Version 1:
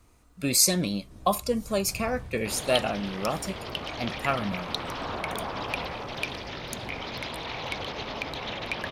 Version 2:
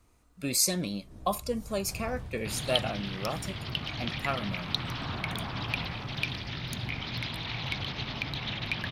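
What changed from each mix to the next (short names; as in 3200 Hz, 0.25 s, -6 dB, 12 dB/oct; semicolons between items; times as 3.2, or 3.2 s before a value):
speech -5.0 dB; second sound: add graphic EQ 125/500/1000/4000/8000 Hz +9/-11/-4/+4/-9 dB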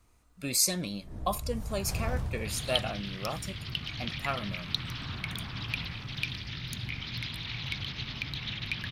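first sound +8.5 dB; second sound: add bell 720 Hz -10.5 dB 1.6 oct; master: add bell 320 Hz -3.5 dB 2.2 oct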